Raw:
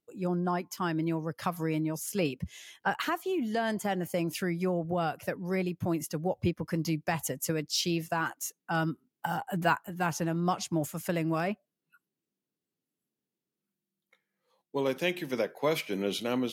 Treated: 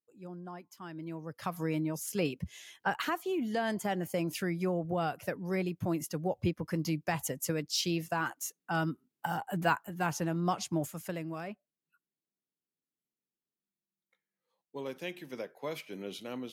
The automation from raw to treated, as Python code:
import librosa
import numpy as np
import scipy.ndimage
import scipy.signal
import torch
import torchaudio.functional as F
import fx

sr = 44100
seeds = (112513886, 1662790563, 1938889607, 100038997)

y = fx.gain(x, sr, db=fx.line((0.83, -14.5), (1.64, -2.0), (10.77, -2.0), (11.33, -10.0)))